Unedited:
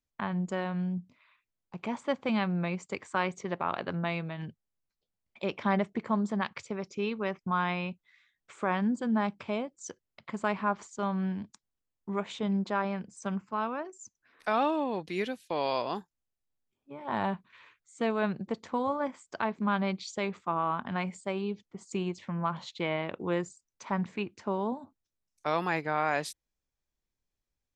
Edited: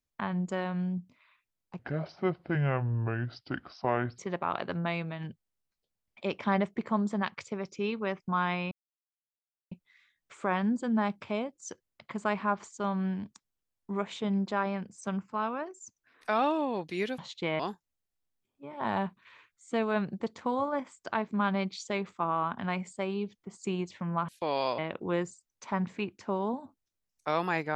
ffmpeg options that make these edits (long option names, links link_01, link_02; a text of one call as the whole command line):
ffmpeg -i in.wav -filter_complex "[0:a]asplit=8[link_01][link_02][link_03][link_04][link_05][link_06][link_07][link_08];[link_01]atrim=end=1.794[link_09];[link_02]atrim=start=1.79:end=3.37,asetpts=PTS-STARTPTS,asetrate=29106,aresample=44100[link_10];[link_03]atrim=start=3.366:end=7.9,asetpts=PTS-STARTPTS,afade=type=out:start_time=4.53:duration=0.004:curve=hsin,apad=pad_dur=1[link_11];[link_04]atrim=start=7.9:end=15.372,asetpts=PTS-STARTPTS,afade=type=in:duration=0.004:curve=hsin[link_12];[link_05]atrim=start=22.558:end=22.972[link_13];[link_06]atrim=start=15.868:end=22.562[link_14];[link_07]atrim=start=15.368:end=15.872[link_15];[link_08]atrim=start=22.968[link_16];[link_09][link_10]acrossfade=duration=0.004:curve1=hsin:curve2=hsin[link_17];[link_11][link_12]concat=n=2:v=0:a=1[link_18];[link_17][link_18]acrossfade=duration=0.004:curve1=hsin:curve2=hsin[link_19];[link_19][link_13]acrossfade=duration=0.004:curve1=hsin:curve2=hsin[link_20];[link_20][link_14]acrossfade=duration=0.004:curve1=hsin:curve2=hsin[link_21];[link_21][link_15]acrossfade=duration=0.004:curve1=hsin:curve2=hsin[link_22];[link_22][link_16]acrossfade=duration=0.004:curve1=hsin:curve2=hsin" out.wav